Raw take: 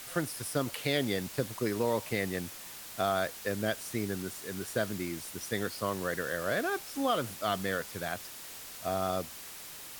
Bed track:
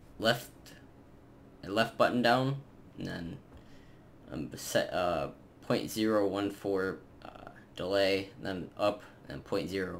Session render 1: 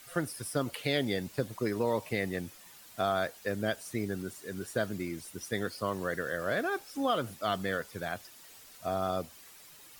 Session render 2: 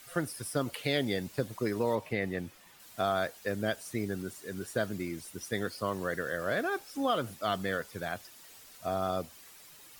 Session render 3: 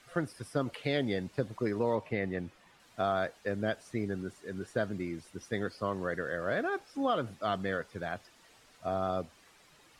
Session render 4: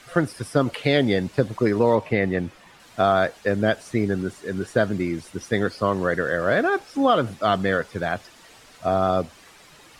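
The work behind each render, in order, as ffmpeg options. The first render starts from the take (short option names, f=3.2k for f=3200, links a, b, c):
-af "afftdn=nr=10:nf=-46"
-filter_complex "[0:a]asettb=1/sr,asplit=3[a][b][c];[a]atrim=end=1.954[d];[b]atrim=start=1.95:end=2.8,asetpts=PTS-STARTPTS,afade=t=in:d=0.004:c=qsin,afade=t=out:st=0.846:d=0.004:c=qsin,acrossover=split=3600[e][f];[f]acompressor=threshold=-57dB:ratio=4:attack=1:release=60[g];[e][g]amix=inputs=2:normalize=0[h];[c]atrim=start=2.796[i];[d][h]acrossfade=d=0.004:c1=hsin:c2=qsin[j];[j][i]acrossfade=d=0.004:c1=qsin:c2=hsin"
-af "lowpass=9.3k,highshelf=f=3.9k:g=-11"
-af "volume=11.5dB"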